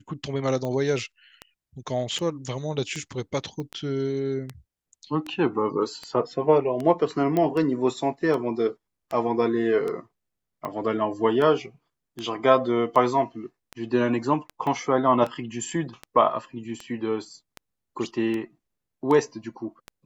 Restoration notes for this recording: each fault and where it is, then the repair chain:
scratch tick 78 rpm −19 dBFS
0:03.60: click −23 dBFS
0:07.37: click −13 dBFS
0:14.67: drop-out 3.1 ms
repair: click removal
repair the gap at 0:14.67, 3.1 ms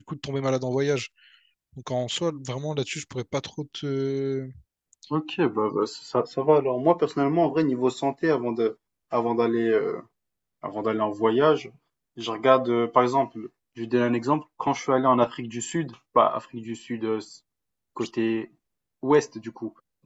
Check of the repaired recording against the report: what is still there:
0:03.60: click

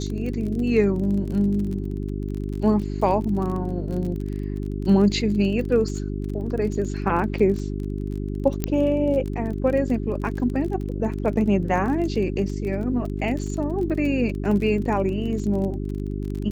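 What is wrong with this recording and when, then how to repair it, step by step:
surface crackle 30 per second −30 dBFS
mains hum 50 Hz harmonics 8 −28 dBFS
0:08.64: click −9 dBFS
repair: click removal
hum removal 50 Hz, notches 8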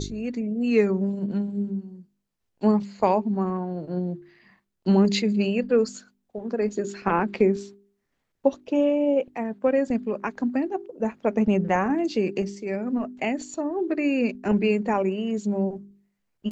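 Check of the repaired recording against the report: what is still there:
none of them is left

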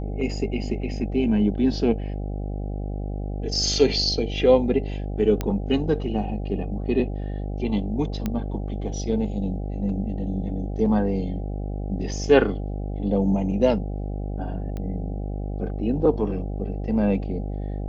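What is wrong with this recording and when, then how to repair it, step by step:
mains buzz 50 Hz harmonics 16 −29 dBFS
0:05.41: click −12 dBFS
0:08.26: click −13 dBFS
0:14.77: click −21 dBFS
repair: click removal
hum removal 50 Hz, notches 16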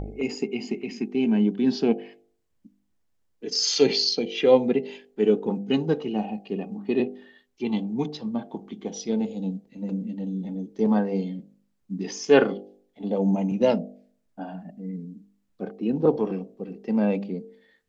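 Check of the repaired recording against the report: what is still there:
none of them is left

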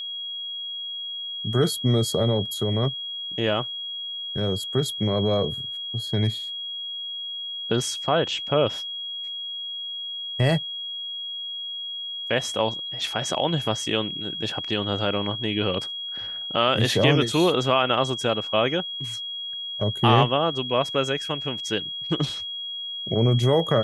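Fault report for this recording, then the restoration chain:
whistle 3,300 Hz −30 dBFS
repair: notch filter 3,300 Hz, Q 30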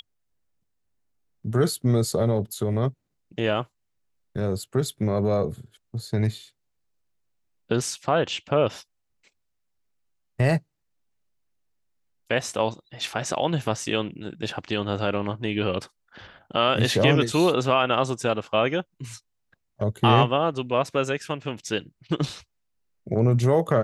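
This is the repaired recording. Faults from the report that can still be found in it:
none of them is left

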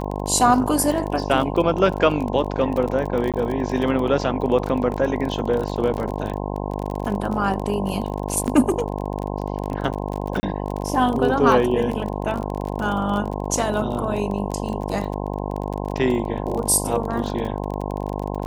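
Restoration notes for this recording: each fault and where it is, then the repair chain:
mains buzz 50 Hz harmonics 21 −27 dBFS
surface crackle 28 per second −26 dBFS
0:03.32–0:03.34: drop-out 17 ms
0:08.47–0:08.48: drop-out 8.7 ms
0:10.40–0:10.43: drop-out 30 ms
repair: click removal
hum removal 50 Hz, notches 21
repair the gap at 0:03.32, 17 ms
repair the gap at 0:08.47, 8.7 ms
repair the gap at 0:10.40, 30 ms

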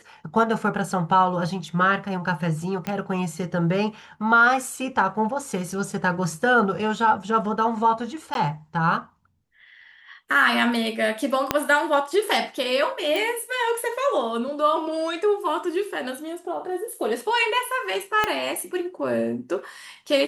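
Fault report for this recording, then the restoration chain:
0:02.87: click −14 dBFS
0:08.34–0:08.35: drop-out 12 ms
0:11.51: click −4 dBFS
0:13.16: click
0:18.24: click −7 dBFS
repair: click removal
repair the gap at 0:08.34, 12 ms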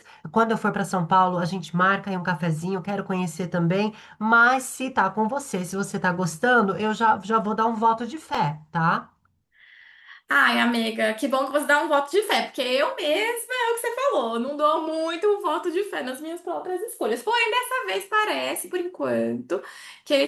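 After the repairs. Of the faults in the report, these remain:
0:11.51: click
0:18.24: click

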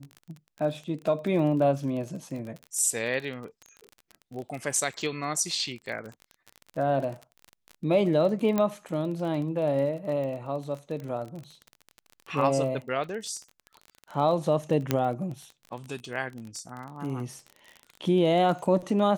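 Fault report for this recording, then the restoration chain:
surface crackle 26 per second −34 dBFS
0:08.58: click −13 dBFS
0:14.91: click −9 dBFS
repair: click removal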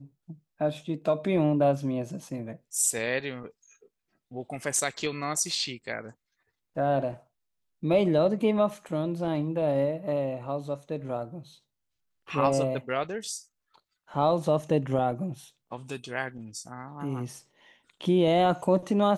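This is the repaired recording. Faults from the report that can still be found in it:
none of them is left

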